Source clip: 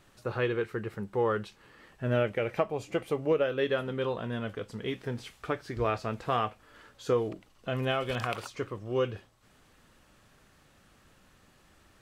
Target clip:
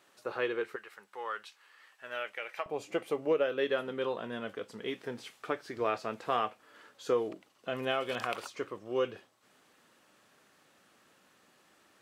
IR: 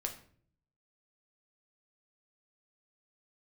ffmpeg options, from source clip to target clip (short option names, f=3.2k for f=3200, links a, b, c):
-af "asetnsamples=n=441:p=0,asendcmd='0.76 highpass f 1100;2.66 highpass f 260',highpass=360,volume=-1.5dB"